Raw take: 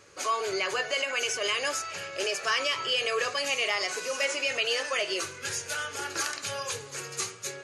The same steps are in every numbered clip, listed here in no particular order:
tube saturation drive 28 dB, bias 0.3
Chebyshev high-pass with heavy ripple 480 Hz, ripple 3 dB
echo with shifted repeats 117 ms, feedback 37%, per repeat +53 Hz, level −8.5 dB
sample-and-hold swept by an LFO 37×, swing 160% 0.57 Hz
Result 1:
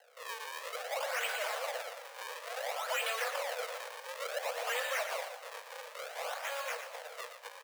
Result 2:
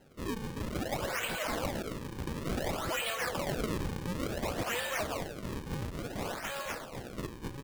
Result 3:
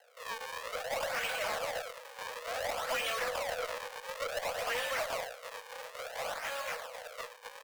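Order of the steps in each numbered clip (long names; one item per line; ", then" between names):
tube saturation, then sample-and-hold swept by an LFO, then Chebyshev high-pass with heavy ripple, then echo with shifted repeats
tube saturation, then echo with shifted repeats, then Chebyshev high-pass with heavy ripple, then sample-and-hold swept by an LFO
echo with shifted repeats, then sample-and-hold swept by an LFO, then Chebyshev high-pass with heavy ripple, then tube saturation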